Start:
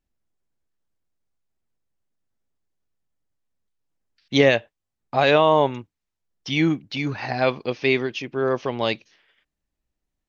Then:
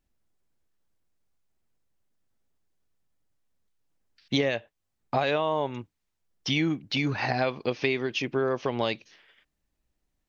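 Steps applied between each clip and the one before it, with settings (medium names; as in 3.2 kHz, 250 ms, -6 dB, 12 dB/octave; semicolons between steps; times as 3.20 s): compression 6:1, threshold -26 dBFS, peak gain reduction 14 dB; trim +3 dB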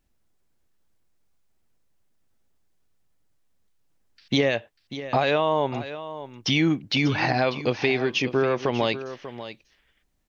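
in parallel at -1.5 dB: peak limiter -18.5 dBFS, peak gain reduction 8 dB; on the sum: delay 592 ms -13 dB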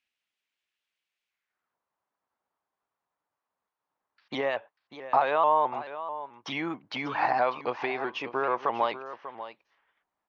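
band-pass sweep 2.7 kHz -> 1 kHz, 1.25–1.77 s; vibrato with a chosen wave saw up 4.6 Hz, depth 100 cents; trim +5 dB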